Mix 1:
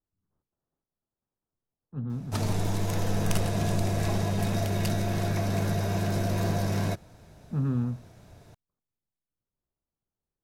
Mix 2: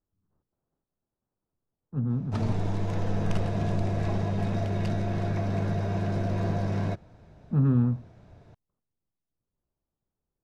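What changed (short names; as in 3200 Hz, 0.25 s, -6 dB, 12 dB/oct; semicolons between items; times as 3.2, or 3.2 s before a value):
speech +5.5 dB; master: add tape spacing loss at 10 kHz 21 dB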